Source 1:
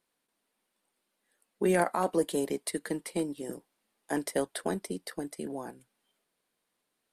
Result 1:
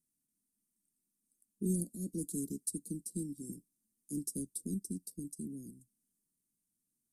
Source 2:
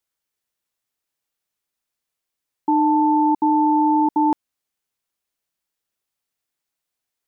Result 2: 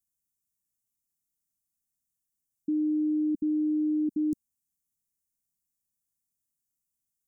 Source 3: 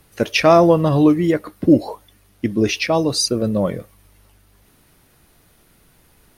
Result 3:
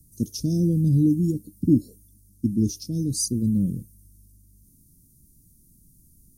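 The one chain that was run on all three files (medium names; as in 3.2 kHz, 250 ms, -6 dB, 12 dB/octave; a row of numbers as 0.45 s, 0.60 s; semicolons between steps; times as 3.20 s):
inverse Chebyshev band-stop 900–2000 Hz, stop band 80 dB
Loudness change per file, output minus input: -7.5 LU, -10.0 LU, -7.0 LU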